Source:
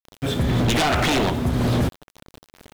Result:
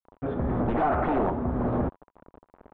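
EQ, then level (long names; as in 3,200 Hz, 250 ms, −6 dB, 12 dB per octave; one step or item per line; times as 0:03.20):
transistor ladder low-pass 1,400 Hz, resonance 25%
parametric band 120 Hz −7.5 dB 1.1 octaves
notch filter 980 Hz, Q 27
+2.5 dB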